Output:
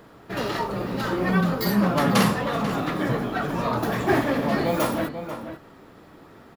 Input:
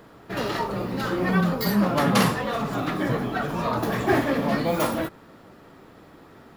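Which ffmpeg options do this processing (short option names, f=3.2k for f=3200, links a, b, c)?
-filter_complex "[0:a]asplit=2[a][b];[b]adelay=489.8,volume=-9dB,highshelf=f=4k:g=-11[c];[a][c]amix=inputs=2:normalize=0"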